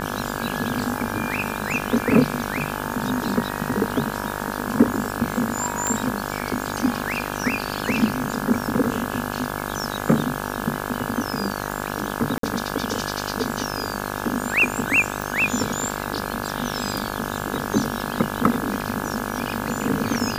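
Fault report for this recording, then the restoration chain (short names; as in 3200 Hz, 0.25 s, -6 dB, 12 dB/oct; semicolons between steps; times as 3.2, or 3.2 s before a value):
buzz 50 Hz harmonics 34 -29 dBFS
5.87 pop -7 dBFS
12.38–12.43 gap 53 ms
15.22 pop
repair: de-click; de-hum 50 Hz, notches 34; interpolate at 12.38, 53 ms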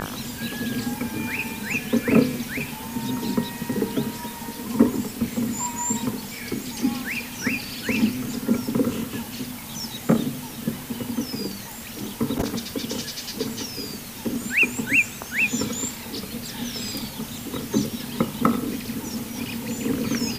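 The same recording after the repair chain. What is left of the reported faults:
none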